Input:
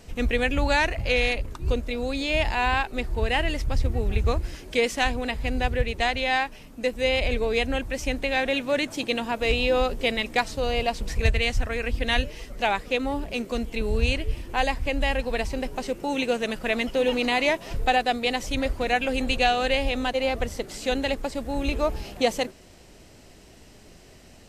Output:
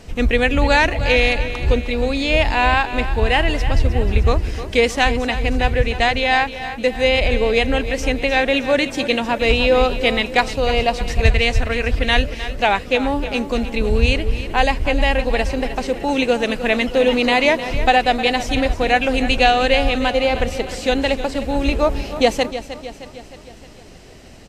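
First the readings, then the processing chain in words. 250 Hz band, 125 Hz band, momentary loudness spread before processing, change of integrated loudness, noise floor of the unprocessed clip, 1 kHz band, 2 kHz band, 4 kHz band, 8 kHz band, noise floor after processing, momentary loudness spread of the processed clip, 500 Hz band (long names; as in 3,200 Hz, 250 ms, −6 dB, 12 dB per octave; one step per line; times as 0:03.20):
+8.0 dB, +8.0 dB, 7 LU, +7.5 dB, −50 dBFS, +8.0 dB, +7.5 dB, +7.0 dB, +4.5 dB, −40 dBFS, 6 LU, +8.0 dB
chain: high-shelf EQ 9,100 Hz −9 dB
repeating echo 309 ms, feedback 54%, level −12.5 dB
level +7.5 dB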